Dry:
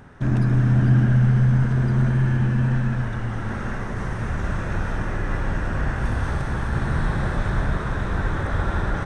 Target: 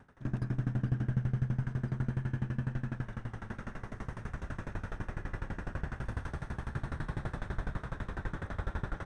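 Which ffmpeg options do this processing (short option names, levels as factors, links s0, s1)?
-af "asoftclip=type=tanh:threshold=0.355,aeval=exprs='val(0)*pow(10,-21*if(lt(mod(12*n/s,1),2*abs(12)/1000),1-mod(12*n/s,1)/(2*abs(12)/1000),(mod(12*n/s,1)-2*abs(12)/1000)/(1-2*abs(12)/1000))/20)':c=same,volume=0.422"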